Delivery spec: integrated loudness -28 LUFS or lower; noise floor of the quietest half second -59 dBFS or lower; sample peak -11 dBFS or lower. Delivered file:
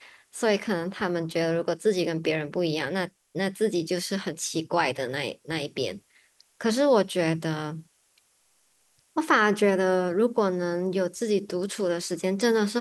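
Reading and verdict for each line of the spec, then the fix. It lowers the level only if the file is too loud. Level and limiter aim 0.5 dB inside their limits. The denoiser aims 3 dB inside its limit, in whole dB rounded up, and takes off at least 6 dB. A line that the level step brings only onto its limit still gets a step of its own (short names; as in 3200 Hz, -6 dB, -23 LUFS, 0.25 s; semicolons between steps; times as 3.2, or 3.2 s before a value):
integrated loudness -26.5 LUFS: fail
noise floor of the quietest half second -66 dBFS: OK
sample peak -7.5 dBFS: fail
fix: gain -2 dB; limiter -11.5 dBFS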